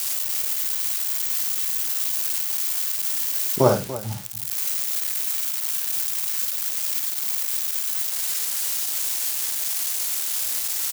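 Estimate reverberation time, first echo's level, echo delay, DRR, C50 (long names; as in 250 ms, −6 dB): no reverb audible, −5.5 dB, 54 ms, no reverb audible, no reverb audible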